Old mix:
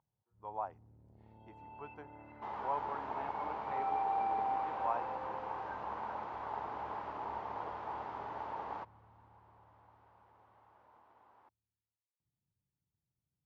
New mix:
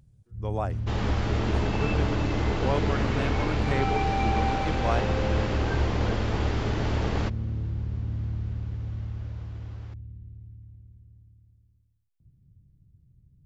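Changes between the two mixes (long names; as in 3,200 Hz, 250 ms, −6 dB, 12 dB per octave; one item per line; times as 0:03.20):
second sound: entry −1.55 s
master: remove resonant band-pass 920 Hz, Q 4.6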